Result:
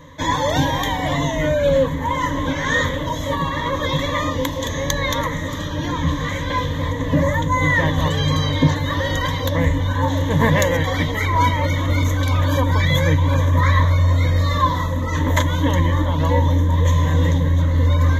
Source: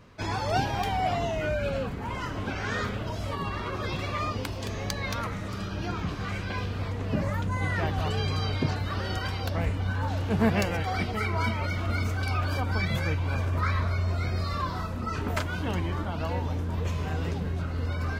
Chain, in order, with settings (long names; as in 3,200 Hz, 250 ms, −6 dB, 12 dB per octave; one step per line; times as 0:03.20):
EQ curve with evenly spaced ripples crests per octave 1.1, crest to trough 18 dB
level +7.5 dB